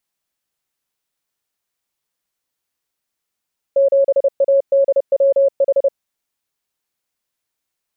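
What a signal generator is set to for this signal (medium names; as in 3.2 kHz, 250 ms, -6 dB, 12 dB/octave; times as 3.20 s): Morse "7ADWH" 30 wpm 551 Hz -9.5 dBFS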